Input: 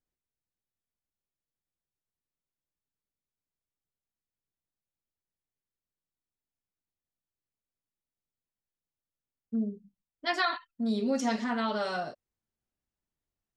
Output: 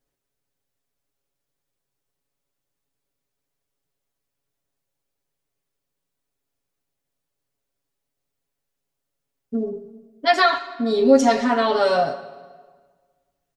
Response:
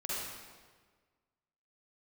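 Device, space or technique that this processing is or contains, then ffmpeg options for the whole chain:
saturated reverb return: -filter_complex "[0:a]asplit=2[link_01][link_02];[1:a]atrim=start_sample=2205[link_03];[link_02][link_03]afir=irnorm=-1:irlink=0,asoftclip=type=tanh:threshold=-21dB,volume=-14dB[link_04];[link_01][link_04]amix=inputs=2:normalize=0,asettb=1/sr,asplit=3[link_05][link_06][link_07];[link_05]atrim=end=10.444[link_08];[link_06]atrim=start=10.44:end=11.05,asetpts=PTS-STARTPTS,afade=type=in:duration=0.004:curve=qsin,afade=type=out:start_time=0.606:duration=0.004:curve=qsin,lowpass=7500[link_09];[link_07]atrim=start=11.046[link_10];[link_08][link_09]acrossfade=duration=0.004:curve1=hsin:curve2=qsin[link_11];[link_11][link_10]acrossfade=duration=0.004:curve1=qsin:curve2=hsin,equalizer=frequency=510:width_type=o:width=1.1:gain=5.5,aecho=1:1:7.2:0.89,volume=6.5dB"

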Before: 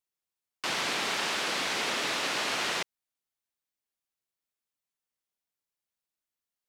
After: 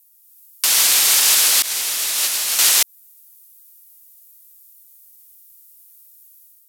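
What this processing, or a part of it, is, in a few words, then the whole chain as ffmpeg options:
FM broadcast chain: -filter_complex "[0:a]highpass=68,dynaudnorm=framelen=110:gausssize=5:maxgain=6.5dB,acrossover=split=480|3800[link_01][link_02][link_03];[link_01]acompressor=threshold=-48dB:ratio=4[link_04];[link_02]acompressor=threshold=-29dB:ratio=4[link_05];[link_03]acompressor=threshold=-36dB:ratio=4[link_06];[link_04][link_05][link_06]amix=inputs=3:normalize=0,aemphasis=mode=production:type=75fm,alimiter=limit=-18dB:level=0:latency=1:release=269,asoftclip=type=hard:threshold=-20dB,lowpass=frequency=15000:width=0.5412,lowpass=frequency=15000:width=1.3066,aemphasis=mode=production:type=75fm,asettb=1/sr,asplit=3[link_07][link_08][link_09];[link_07]atrim=end=1.624[link_10];[link_08]atrim=start=1.62:end=2.59,asetpts=PTS-STARTPTS,afade=type=in:duration=0.004:curve=qsin,afade=type=out:start_time=0.966:duration=0.004:curve=qsin,agate=range=-33dB:threshold=-13dB:ratio=3:detection=peak[link_11];[link_09]atrim=start=2.586[link_12];[link_10][link_11]acrossfade=duration=0.004:curve1=hsin:curve2=qsin[link_13];[link_13][link_12]acrossfade=duration=0.004:curve1=qsin:curve2=hsin,volume=6dB"

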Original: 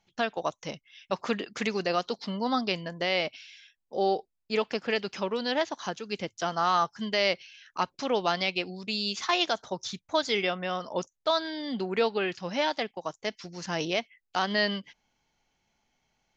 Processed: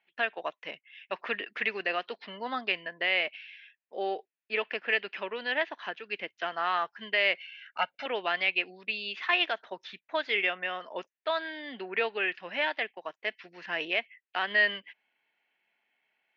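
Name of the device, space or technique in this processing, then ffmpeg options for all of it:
phone earpiece: -filter_complex "[0:a]asettb=1/sr,asplit=3[link_01][link_02][link_03];[link_01]atrim=end=7.374[link_04];[link_02]atrim=start=7.37:end=8.06,asetpts=PTS-STARTPTS,afade=type=in:duration=0.004:curve=qsin,afade=type=out:start_time=0.686:duration=0.004:curve=qsin,aecho=1:1:1.4:0.96,atrim=end_sample=30429[link_05];[link_03]atrim=start=8.056[link_06];[link_04][link_05]acrossfade=duration=0.004:curve1=hsin:curve2=qsin[link_07];[link_07][link_06]acrossfade=duration=0.004:curve1=qsin:curve2=hsin,highpass=500,equalizer=frequency=530:width_type=q:width=4:gain=-4,equalizer=frequency=830:width_type=q:width=4:gain=-6,equalizer=frequency=1200:width_type=q:width=4:gain=-5,equalizer=frequency=1800:width_type=q:width=4:gain=7,equalizer=frequency=2600:width_type=q:width=4:gain=6,lowpass=frequency=3000:width=0.5412,lowpass=frequency=3000:width=1.3066"

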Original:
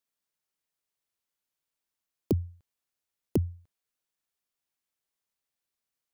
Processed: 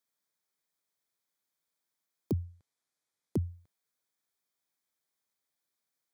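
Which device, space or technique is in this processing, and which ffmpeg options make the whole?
PA system with an anti-feedback notch: -filter_complex "[0:a]highpass=110,asuperstop=centerf=2800:order=4:qfactor=5.5,alimiter=limit=-24dB:level=0:latency=1:release=15,asettb=1/sr,asplit=3[link_01][link_02][link_03];[link_01]atrim=end=2.434[link_04];[link_02]atrim=start=2.43:end=3.4,asetpts=PTS-STARTPTS,afade=type=in:duration=0.004:curve=qsin,afade=type=out:start_time=0.966:duration=0.004:curve=qsin,lowpass=11000[link_05];[link_03]atrim=start=3.396[link_06];[link_04][link_05]acrossfade=duration=0.004:curve1=hsin:curve2=qsin[link_07];[link_07][link_06]acrossfade=duration=0.004:curve1=qsin:curve2=hsin,volume=1.5dB"

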